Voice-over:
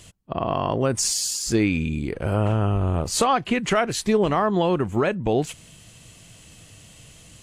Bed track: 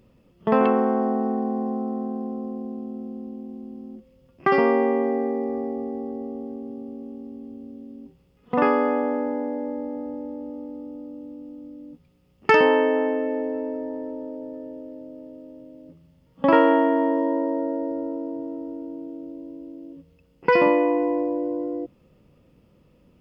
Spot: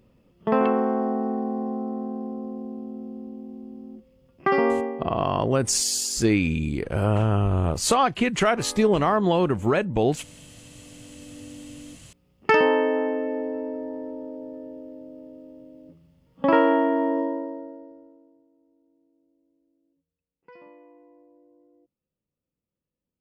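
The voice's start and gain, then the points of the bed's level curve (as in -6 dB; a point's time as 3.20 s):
4.70 s, 0.0 dB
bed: 4.71 s -2 dB
5.21 s -20.5 dB
10.51 s -20.5 dB
11.47 s -2 dB
17.20 s -2 dB
18.49 s -31.5 dB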